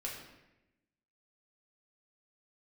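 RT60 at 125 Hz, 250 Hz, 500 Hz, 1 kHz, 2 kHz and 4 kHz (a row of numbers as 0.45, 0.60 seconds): 1.2, 1.3, 1.0, 0.85, 0.95, 0.75 seconds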